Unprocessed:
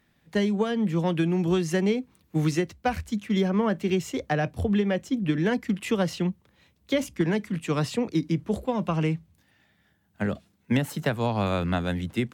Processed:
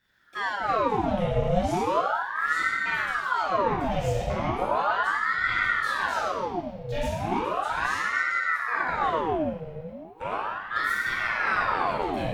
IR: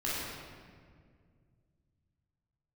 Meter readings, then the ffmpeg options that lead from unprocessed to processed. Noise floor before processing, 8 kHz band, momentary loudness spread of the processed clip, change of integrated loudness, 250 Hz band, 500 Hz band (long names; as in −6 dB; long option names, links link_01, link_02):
−67 dBFS, −4.0 dB, 7 LU, +0.5 dB, −9.5 dB, −1.0 dB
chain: -filter_complex "[0:a]alimiter=limit=-18.5dB:level=0:latency=1:release=117[link_01];[1:a]atrim=start_sample=2205[link_02];[link_01][link_02]afir=irnorm=-1:irlink=0,aeval=exprs='val(0)*sin(2*PI*1000*n/s+1000*0.7/0.36*sin(2*PI*0.36*n/s))':channel_layout=same,volume=-4dB"